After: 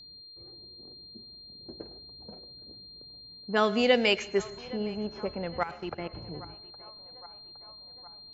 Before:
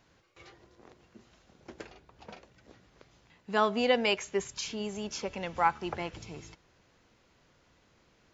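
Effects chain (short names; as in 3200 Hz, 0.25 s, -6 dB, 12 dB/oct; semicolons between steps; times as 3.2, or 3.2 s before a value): low-pass opened by the level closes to 340 Hz, open at -23.5 dBFS; whine 4200 Hz -51 dBFS; 5.63–6.13 level quantiser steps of 19 dB; narrowing echo 0.814 s, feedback 67%, band-pass 910 Hz, level -19 dB; on a send at -18 dB: reverb RT60 0.50 s, pre-delay 98 ms; on the sum: dynamic EQ 960 Hz, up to -7 dB, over -49 dBFS, Q 2.1; gain +4 dB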